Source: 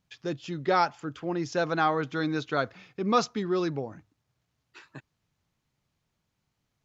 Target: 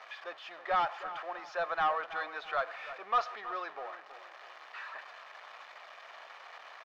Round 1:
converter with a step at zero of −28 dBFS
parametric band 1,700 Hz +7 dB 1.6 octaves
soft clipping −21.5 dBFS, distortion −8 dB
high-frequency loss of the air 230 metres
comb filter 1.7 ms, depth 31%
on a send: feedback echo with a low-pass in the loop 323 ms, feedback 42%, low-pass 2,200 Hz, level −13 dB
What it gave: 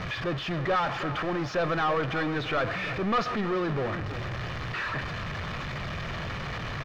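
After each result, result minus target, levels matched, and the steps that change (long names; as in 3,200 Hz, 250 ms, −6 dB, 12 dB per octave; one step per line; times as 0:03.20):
500 Hz band +4.0 dB; converter with a step at zero: distortion +6 dB
add after converter with a step at zero: four-pole ladder high-pass 610 Hz, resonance 40%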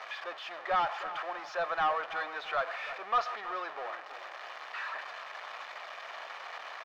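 converter with a step at zero: distortion +6 dB
change: converter with a step at zero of −35 dBFS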